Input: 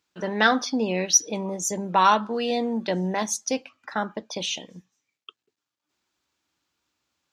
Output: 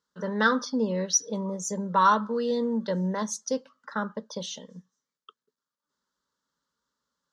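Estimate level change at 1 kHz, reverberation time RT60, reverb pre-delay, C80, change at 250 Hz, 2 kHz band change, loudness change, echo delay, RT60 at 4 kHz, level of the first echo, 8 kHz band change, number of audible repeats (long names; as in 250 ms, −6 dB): −2.5 dB, no reverb audible, no reverb audible, no reverb audible, −1.0 dB, −4.0 dB, −3.0 dB, no echo audible, no reverb audible, no echo audible, −5.5 dB, no echo audible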